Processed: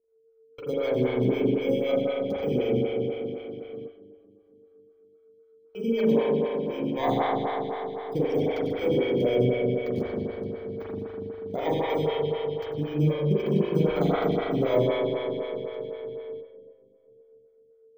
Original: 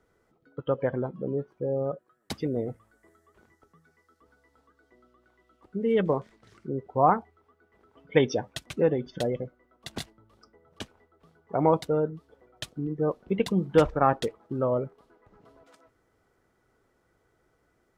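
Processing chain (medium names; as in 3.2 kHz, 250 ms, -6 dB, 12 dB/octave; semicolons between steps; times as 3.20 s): bit-reversed sample order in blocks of 16 samples; treble shelf 6.2 kHz +8.5 dB; compression 5:1, threshold -24 dBFS, peak gain reduction 11.5 dB; waveshaping leveller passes 1; harmonic tremolo 3.9 Hz, depth 70%, crossover 560 Hz; whistle 450 Hz -51 dBFS; spring tank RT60 3.6 s, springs 40 ms, chirp 80 ms, DRR -9.5 dB; gate with hold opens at -28 dBFS; distance through air 200 m; two-band feedback delay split 530 Hz, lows 330 ms, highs 96 ms, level -12 dB; lamp-driven phase shifter 3.9 Hz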